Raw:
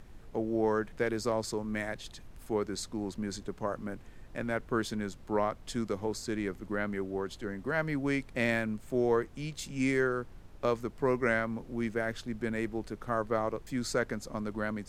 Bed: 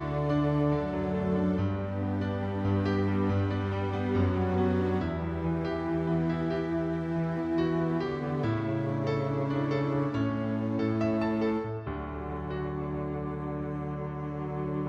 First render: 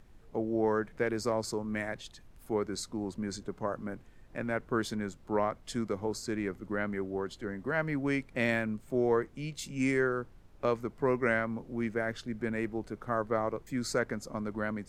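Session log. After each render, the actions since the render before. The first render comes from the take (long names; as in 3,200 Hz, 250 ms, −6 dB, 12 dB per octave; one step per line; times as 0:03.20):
noise reduction from a noise print 6 dB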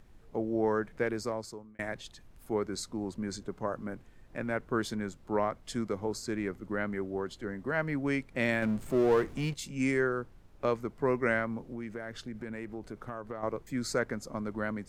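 0:01.05–0:01.79: fade out
0:08.62–0:09.54: power curve on the samples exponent 0.7
0:11.71–0:13.43: downward compressor 5 to 1, threshold −35 dBFS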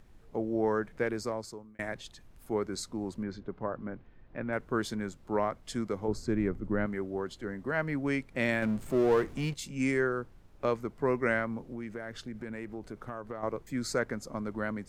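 0:03.23–0:04.53: high-frequency loss of the air 270 metres
0:06.08–0:06.86: spectral tilt −2.5 dB per octave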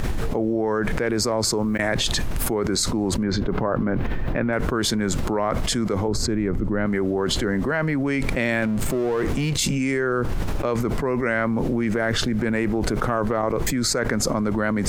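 envelope flattener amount 100%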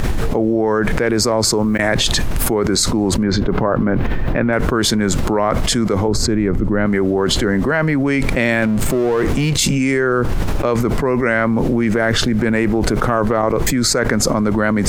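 level +6.5 dB
brickwall limiter −3 dBFS, peak gain reduction 1 dB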